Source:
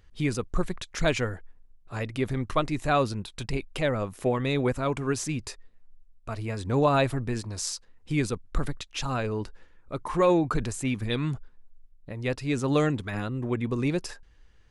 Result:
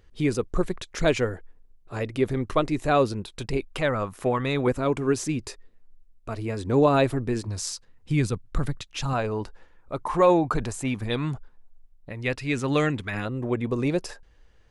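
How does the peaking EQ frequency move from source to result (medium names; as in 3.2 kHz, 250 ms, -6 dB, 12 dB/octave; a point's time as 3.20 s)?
peaking EQ +6.5 dB 1.2 oct
410 Hz
from 3.71 s 1.2 kHz
from 4.67 s 360 Hz
from 7.47 s 120 Hz
from 9.13 s 780 Hz
from 12.10 s 2.2 kHz
from 13.25 s 580 Hz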